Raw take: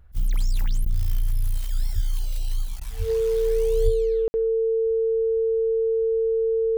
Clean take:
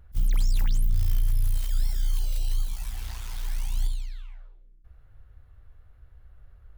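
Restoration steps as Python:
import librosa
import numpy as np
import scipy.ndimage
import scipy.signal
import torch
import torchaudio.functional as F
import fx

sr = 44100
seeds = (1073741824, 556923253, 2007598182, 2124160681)

y = fx.notch(x, sr, hz=450.0, q=30.0)
y = fx.highpass(y, sr, hz=140.0, slope=24, at=(1.94, 2.06), fade=0.02)
y = fx.highpass(y, sr, hz=140.0, slope=24, at=(2.98, 3.1), fade=0.02)
y = fx.highpass(y, sr, hz=140.0, slope=24, at=(3.84, 3.96), fade=0.02)
y = fx.fix_ambience(y, sr, seeds[0], print_start_s=2.6, print_end_s=3.1, start_s=4.28, end_s=4.34)
y = fx.fix_interpolate(y, sr, at_s=(0.85, 2.8), length_ms=10.0)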